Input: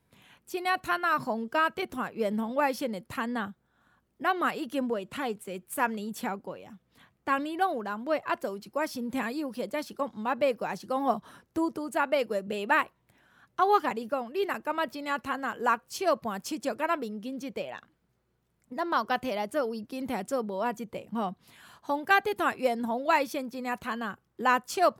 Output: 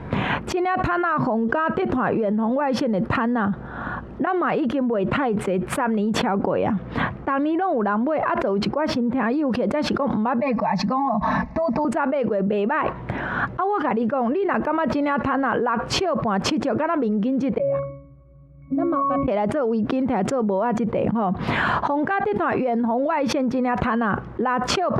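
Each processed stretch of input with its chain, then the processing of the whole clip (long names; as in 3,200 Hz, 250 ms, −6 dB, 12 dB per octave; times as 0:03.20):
0:01.25–0:04.27: downward compressor, threshold −40 dBFS + notch filter 2,200 Hz, Q 14
0:08.69–0:09.30: low-pass filter 3,100 Hz 6 dB per octave + bad sample-rate conversion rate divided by 2×, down none, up zero stuff
0:10.40–0:11.85: phaser with its sweep stopped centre 2,100 Hz, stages 8 + comb filter 4.6 ms, depth 92%
0:17.58–0:19.28: bass and treble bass +3 dB, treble +12 dB + resonances in every octave C#, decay 0.48 s
whole clip: low-pass filter 1,500 Hz 12 dB per octave; envelope flattener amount 100%; level −1.5 dB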